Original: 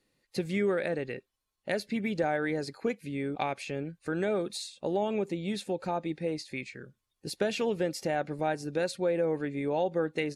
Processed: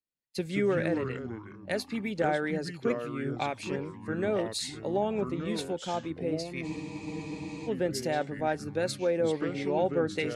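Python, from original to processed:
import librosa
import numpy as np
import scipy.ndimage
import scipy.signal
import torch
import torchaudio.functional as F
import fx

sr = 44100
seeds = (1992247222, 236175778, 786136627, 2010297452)

y = fx.echo_pitch(x, sr, ms=80, semitones=-4, count=3, db_per_echo=-6.0)
y = fx.spec_freeze(y, sr, seeds[0], at_s=6.67, hold_s=1.0)
y = fx.band_widen(y, sr, depth_pct=70)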